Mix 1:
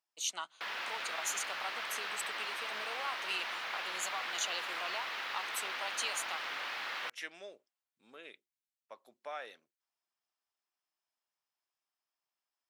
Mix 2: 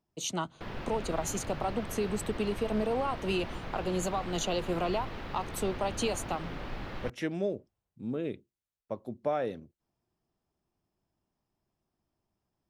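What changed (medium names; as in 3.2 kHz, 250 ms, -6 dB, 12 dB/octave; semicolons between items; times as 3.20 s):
background -9.5 dB; master: remove high-pass 1.4 kHz 12 dB/octave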